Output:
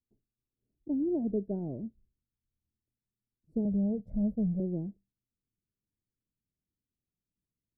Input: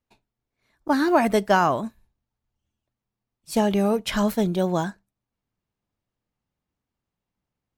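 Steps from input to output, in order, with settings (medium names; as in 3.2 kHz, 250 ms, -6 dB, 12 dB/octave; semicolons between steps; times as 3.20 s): rattle on loud lows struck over -38 dBFS, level -16 dBFS; inverse Chebyshev low-pass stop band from 1.1 kHz, stop band 50 dB; 3.65–4.60 s: comb 1.4 ms, depth 99%; trim -7.5 dB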